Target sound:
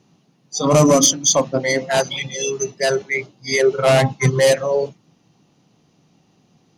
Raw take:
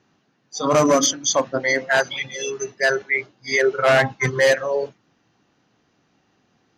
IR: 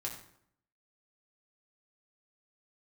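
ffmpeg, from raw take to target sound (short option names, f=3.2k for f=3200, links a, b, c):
-af "acontrast=66,equalizer=f=160:t=o:w=0.67:g=9,equalizer=f=1.6k:t=o:w=0.67:g=-11,equalizer=f=10k:t=o:w=0.67:g=12,volume=-2.5dB"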